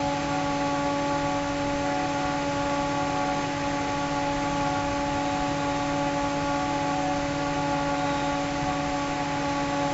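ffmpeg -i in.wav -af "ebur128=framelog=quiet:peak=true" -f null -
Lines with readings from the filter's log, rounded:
Integrated loudness:
  I:         -26.7 LUFS
  Threshold: -36.7 LUFS
Loudness range:
  LRA:         0.3 LU
  Threshold: -46.7 LUFS
  LRA low:   -26.9 LUFS
  LRA high:  -26.5 LUFS
True peak:
  Peak:      -14.0 dBFS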